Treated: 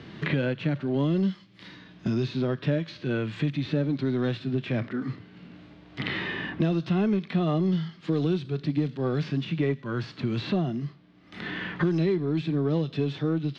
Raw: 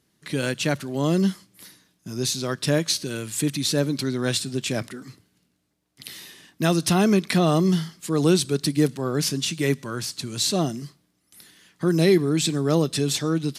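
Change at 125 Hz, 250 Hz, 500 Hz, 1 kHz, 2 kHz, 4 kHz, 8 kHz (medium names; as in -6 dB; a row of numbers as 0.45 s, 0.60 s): -1.5 dB, -3.0 dB, -5.0 dB, -7.0 dB, -2.5 dB, -12.0 dB, under -30 dB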